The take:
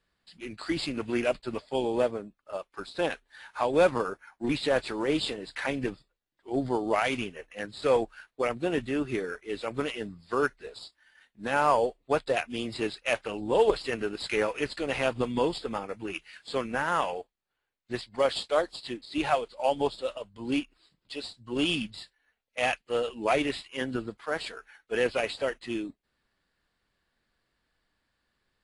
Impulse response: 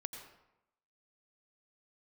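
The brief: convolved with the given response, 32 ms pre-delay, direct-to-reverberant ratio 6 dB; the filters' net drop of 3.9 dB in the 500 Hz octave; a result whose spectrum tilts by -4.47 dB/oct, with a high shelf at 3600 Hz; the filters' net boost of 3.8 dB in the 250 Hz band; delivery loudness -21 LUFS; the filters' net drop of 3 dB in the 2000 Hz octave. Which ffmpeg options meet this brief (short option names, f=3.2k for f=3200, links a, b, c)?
-filter_complex "[0:a]equalizer=f=250:t=o:g=7,equalizer=f=500:t=o:g=-6.5,equalizer=f=2k:t=o:g=-6,highshelf=f=3.6k:g=6.5,asplit=2[a][b];[1:a]atrim=start_sample=2205,adelay=32[c];[b][c]afir=irnorm=-1:irlink=0,volume=-4dB[d];[a][d]amix=inputs=2:normalize=0,volume=9dB"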